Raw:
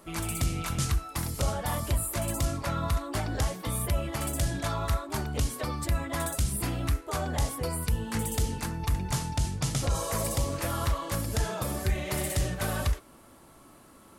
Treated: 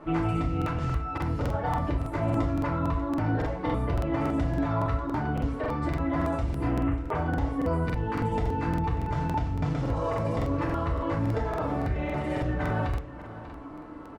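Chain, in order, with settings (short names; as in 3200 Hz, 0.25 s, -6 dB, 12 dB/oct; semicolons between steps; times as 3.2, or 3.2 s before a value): 6.7–7.15 CVSD 16 kbps; LPF 1600 Hz 12 dB/oct; compressor, threshold -34 dBFS, peak gain reduction 11.5 dB; limiter -31 dBFS, peak gain reduction 6.5 dB; echo 0.591 s -14.5 dB; FDN reverb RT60 0.44 s, low-frequency decay 0.9×, high-frequency decay 0.8×, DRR -2.5 dB; crackling interface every 0.28 s, samples 2048, repeat, from 0.57; gain +6.5 dB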